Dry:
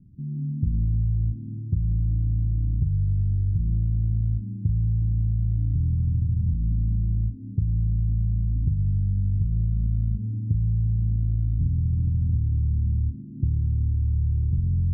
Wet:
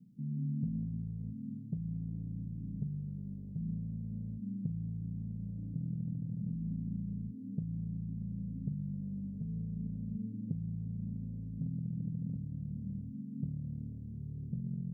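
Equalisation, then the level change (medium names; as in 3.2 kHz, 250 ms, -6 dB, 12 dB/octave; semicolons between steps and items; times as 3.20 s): high-pass 210 Hz 12 dB/octave; static phaser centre 330 Hz, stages 6; +2.0 dB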